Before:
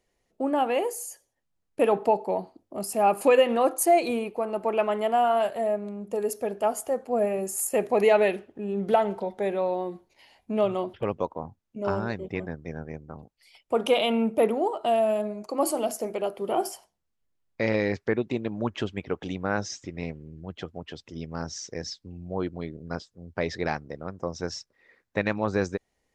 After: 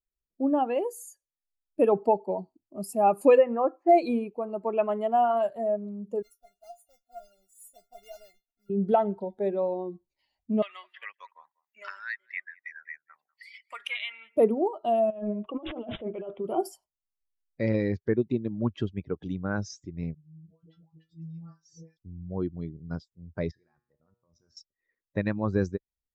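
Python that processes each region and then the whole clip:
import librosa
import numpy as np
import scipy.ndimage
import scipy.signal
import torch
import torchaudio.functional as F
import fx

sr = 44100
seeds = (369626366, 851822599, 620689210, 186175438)

y = fx.chain(x, sr, fx.lowpass(hz=2300.0, slope=24),
    fx.low_shelf(hz=250.0, db=-8.5), at=(3.38, 3.89))
y = fx.chain(y, sr, fx.quant_companded(bits=4),
    fx.comb_fb(f0_hz=700.0, decay_s=0.16, harmonics='all', damping=0.0, mix_pct=100), at=(6.22, 8.7))
y = fx.chain(y, sr, fx.highpass_res(hz=1900.0, q=6.7),
    fx.echo_single(ms=194, db=-20.5),
    fx.band_squash(depth_pct=70), at=(10.62, 14.37))
y = fx.chain(y, sr, fx.peak_eq(hz=1800.0, db=3.5, octaves=2.5),
    fx.over_compress(threshold_db=-31.0, ratio=-1.0),
    fx.resample_bad(factor=6, down='none', up='filtered'), at=(15.1, 16.47))
y = fx.chain(y, sr, fx.stiff_resonator(f0_hz=160.0, decay_s=0.3, stiffness=0.002),
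    fx.dispersion(late='highs', ms=130.0, hz=660.0), at=(20.14, 21.97))
y = fx.chain(y, sr, fx.peak_eq(hz=1200.0, db=6.5, octaves=2.3),
    fx.level_steps(step_db=21),
    fx.comb_fb(f0_hz=120.0, decay_s=0.91, harmonics='all', damping=0.0, mix_pct=80), at=(23.51, 24.57))
y = fx.bin_expand(y, sr, power=1.5)
y = fx.tilt_shelf(y, sr, db=5.5, hz=880.0)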